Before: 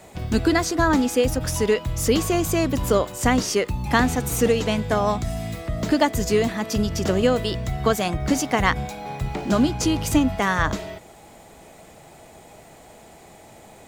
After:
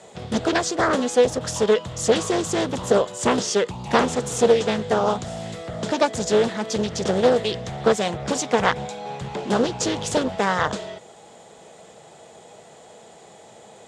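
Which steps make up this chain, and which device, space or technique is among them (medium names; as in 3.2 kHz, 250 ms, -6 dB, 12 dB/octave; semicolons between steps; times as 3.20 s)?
full-range speaker at full volume (loudspeaker Doppler distortion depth 0.94 ms; cabinet simulation 150–8900 Hz, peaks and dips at 290 Hz -8 dB, 470 Hz +6 dB, 2.3 kHz -5 dB, 3.4 kHz +5 dB, 7.2 kHz +4 dB)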